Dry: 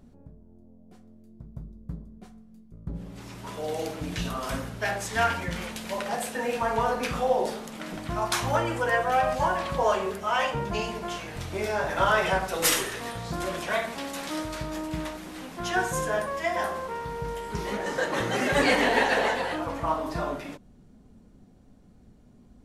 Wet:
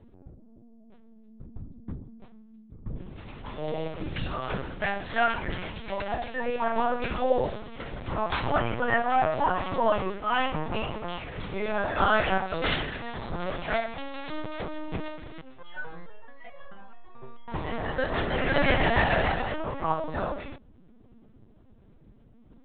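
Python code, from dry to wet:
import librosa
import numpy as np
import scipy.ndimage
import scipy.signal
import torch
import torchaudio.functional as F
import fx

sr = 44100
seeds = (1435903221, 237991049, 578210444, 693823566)

y = fx.lpc_vocoder(x, sr, seeds[0], excitation='pitch_kept', order=10)
y = fx.resonator_held(y, sr, hz=4.6, low_hz=130.0, high_hz=560.0, at=(15.41, 17.48))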